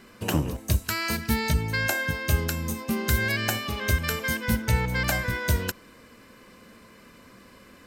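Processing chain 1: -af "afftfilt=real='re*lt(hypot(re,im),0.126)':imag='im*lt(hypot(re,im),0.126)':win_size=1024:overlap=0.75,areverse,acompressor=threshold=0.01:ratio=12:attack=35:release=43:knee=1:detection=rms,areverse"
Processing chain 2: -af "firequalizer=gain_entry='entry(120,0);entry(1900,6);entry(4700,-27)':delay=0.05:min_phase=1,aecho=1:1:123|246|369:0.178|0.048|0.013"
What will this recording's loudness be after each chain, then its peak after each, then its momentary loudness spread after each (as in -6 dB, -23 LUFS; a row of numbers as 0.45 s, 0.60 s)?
-38.5 LUFS, -25.0 LUFS; -24.5 dBFS, -9.0 dBFS; 13 LU, 5 LU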